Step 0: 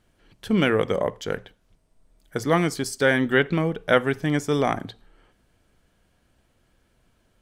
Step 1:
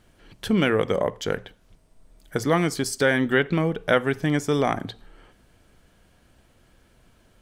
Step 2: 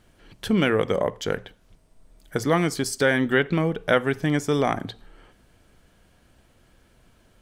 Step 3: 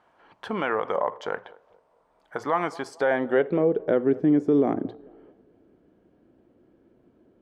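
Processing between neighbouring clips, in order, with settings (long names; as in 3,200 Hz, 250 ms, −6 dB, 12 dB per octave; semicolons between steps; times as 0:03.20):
downward compressor 1.5 to 1, threshold −36 dBFS, peak gain reduction 8.5 dB; level +6.5 dB
no processing that can be heard
band-pass filter sweep 940 Hz → 330 Hz, 0:02.83–0:04.03; feedback echo with a band-pass in the loop 220 ms, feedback 41%, band-pass 530 Hz, level −23 dB; brickwall limiter −21 dBFS, peak gain reduction 6 dB; level +8.5 dB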